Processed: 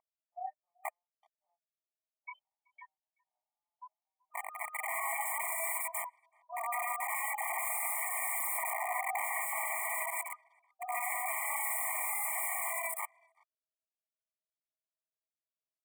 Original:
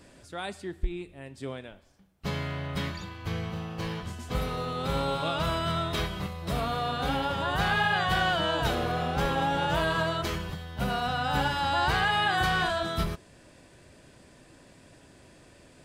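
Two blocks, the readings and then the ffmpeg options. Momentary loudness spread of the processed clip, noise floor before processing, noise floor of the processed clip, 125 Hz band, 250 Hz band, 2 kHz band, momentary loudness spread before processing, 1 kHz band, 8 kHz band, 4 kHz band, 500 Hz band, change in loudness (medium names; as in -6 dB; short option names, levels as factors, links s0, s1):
13 LU, -56 dBFS, under -85 dBFS, under -40 dB, under -40 dB, -7.5 dB, 13 LU, -8.5 dB, +9.5 dB, under -30 dB, -14.5 dB, -5.5 dB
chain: -filter_complex "[0:a]aemphasis=mode=production:type=75kf,afwtdn=0.0158,afftfilt=real='re*gte(hypot(re,im),0.0891)':imag='im*gte(hypot(re,im),0.0891)':win_size=1024:overlap=0.75,equalizer=f=91:t=o:w=2.4:g=-10.5,aecho=1:1:2.3:0.83,acrossover=split=120[s0][s1];[s1]acontrast=22[s2];[s0][s2]amix=inputs=2:normalize=0,aeval=exprs='val(0)+0.00891*(sin(2*PI*60*n/s)+sin(2*PI*2*60*n/s)/2+sin(2*PI*3*60*n/s)/3+sin(2*PI*4*60*n/s)/4+sin(2*PI*5*60*n/s)/5)':c=same,flanger=delay=18:depth=7.9:speed=0.7,aeval=exprs='(mod(15.8*val(0)+1,2)-1)/15.8':c=same,asuperstop=centerf=4600:order=20:qfactor=1,asplit=2[s3][s4];[s4]adelay=380,highpass=300,lowpass=3400,asoftclip=type=hard:threshold=0.0447,volume=0.0398[s5];[s3][s5]amix=inputs=2:normalize=0,afftfilt=real='re*eq(mod(floor(b*sr/1024/610),2),1)':imag='im*eq(mod(floor(b*sr/1024/610),2),1)':win_size=1024:overlap=0.75,volume=0.891"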